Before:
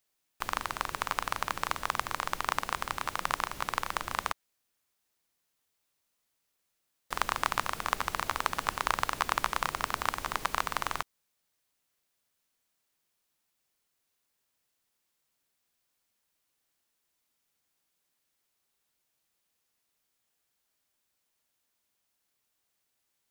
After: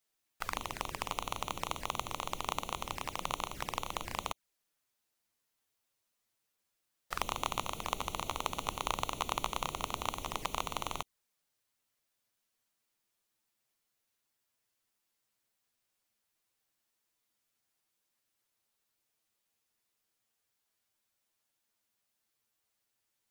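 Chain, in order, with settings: envelope flanger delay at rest 9.2 ms, full sweep at -31 dBFS

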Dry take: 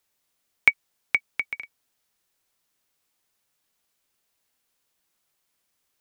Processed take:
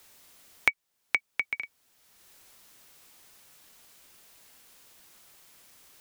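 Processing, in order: three-band squash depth 70%; gain -2.5 dB

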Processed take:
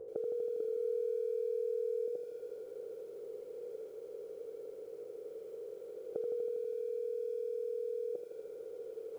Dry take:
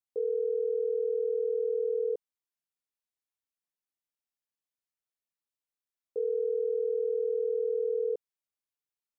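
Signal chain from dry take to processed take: per-bin compression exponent 0.2; spectral noise reduction 12 dB; 0.6–2.08 bell 340 Hz +12.5 dB 1.2 oct; compressor 3:1, threshold -50 dBFS, peak gain reduction 14.5 dB; lo-fi delay 81 ms, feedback 80%, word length 13-bit, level -7.5 dB; gain +12 dB

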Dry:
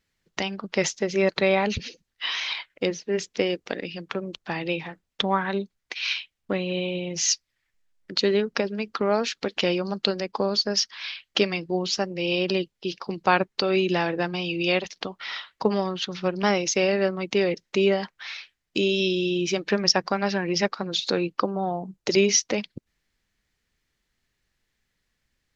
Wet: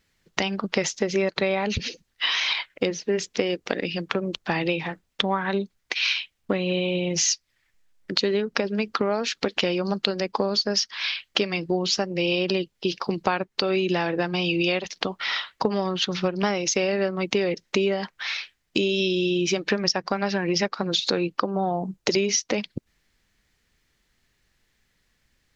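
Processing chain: compressor, threshold -27 dBFS, peak gain reduction 13 dB; gain +7 dB

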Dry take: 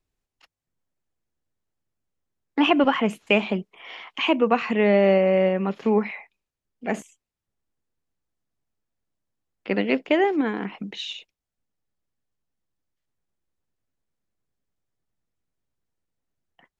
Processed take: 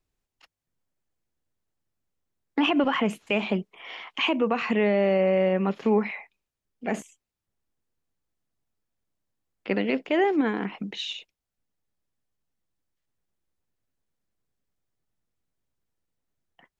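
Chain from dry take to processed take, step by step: limiter -14 dBFS, peak gain reduction 7.5 dB

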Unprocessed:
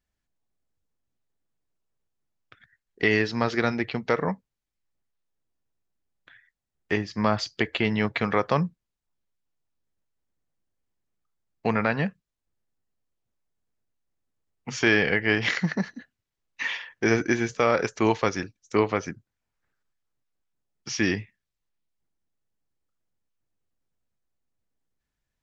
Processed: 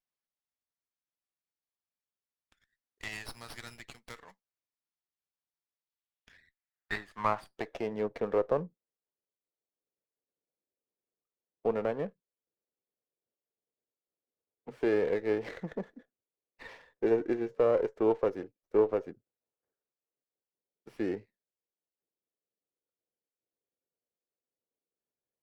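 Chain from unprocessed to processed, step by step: band-pass sweep 6000 Hz -> 470 Hz, 5.55–8.05; running maximum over 5 samples

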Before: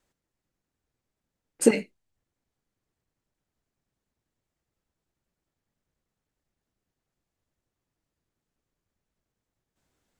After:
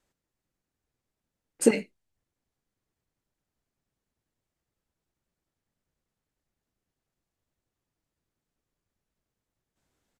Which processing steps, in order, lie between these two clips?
downsampling 32000 Hz; gain -1.5 dB

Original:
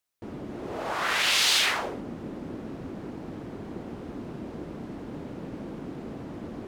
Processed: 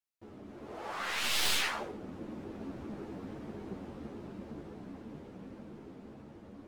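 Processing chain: tracing distortion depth 0.072 ms; Doppler pass-by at 3.12, 9 m/s, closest 13 m; ensemble effect; gain -1.5 dB

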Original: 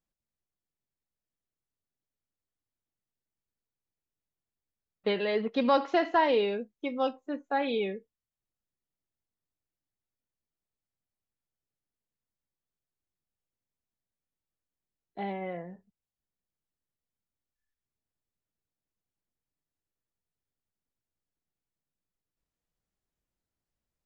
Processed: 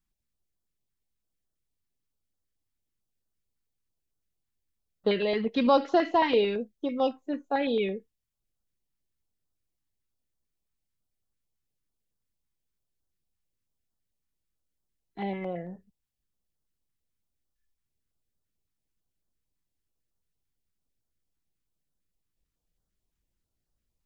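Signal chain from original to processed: low shelf 66 Hz +9 dB; stepped notch 9 Hz 570–2300 Hz; gain +3.5 dB

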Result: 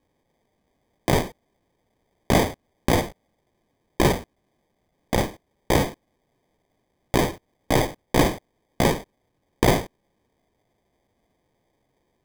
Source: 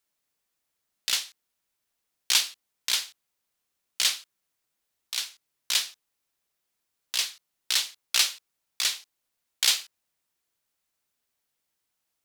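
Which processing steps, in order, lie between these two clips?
half-waves squared off; in parallel at -2.5 dB: negative-ratio compressor -26 dBFS, ratio -1; on the sum: sample-and-hold 32×

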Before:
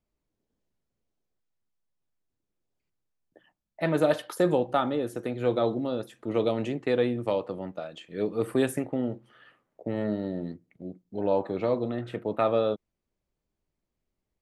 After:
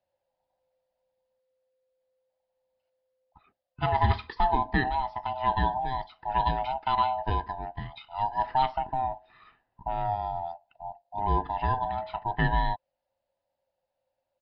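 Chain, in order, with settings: band-swap scrambler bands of 500 Hz; downsampling 11025 Hz

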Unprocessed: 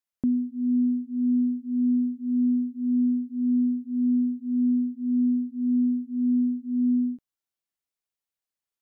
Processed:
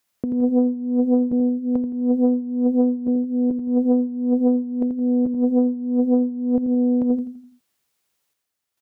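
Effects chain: HPF 49 Hz 12 dB/oct; in parallel at +0.5 dB: limiter -28 dBFS, peak gain reduction 10.5 dB; on the sum: chopper 0.57 Hz, depth 60%, duty 75%; negative-ratio compressor -24 dBFS, ratio -0.5; on a send: feedback echo 84 ms, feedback 42%, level -7.5 dB; on the sum: Doppler distortion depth 0.6 ms; gain +6.5 dB

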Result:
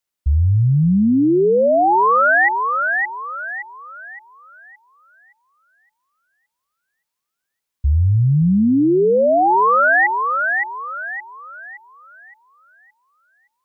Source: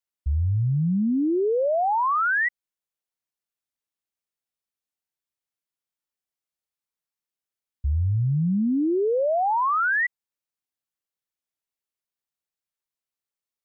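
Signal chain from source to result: thinning echo 0.568 s, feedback 41%, high-pass 620 Hz, level -4 dB; gain +8 dB

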